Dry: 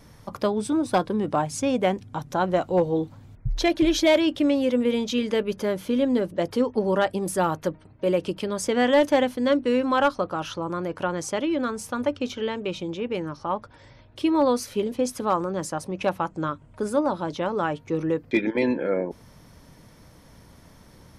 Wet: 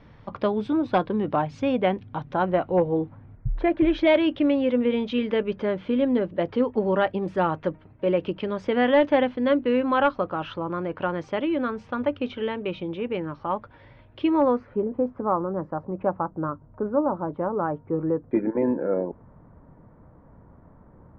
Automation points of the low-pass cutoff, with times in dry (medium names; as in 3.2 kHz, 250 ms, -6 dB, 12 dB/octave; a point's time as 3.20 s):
low-pass 24 dB/octave
2.15 s 3.4 kHz
3.59 s 1.8 kHz
4.12 s 3.1 kHz
14.27 s 3.1 kHz
14.81 s 1.3 kHz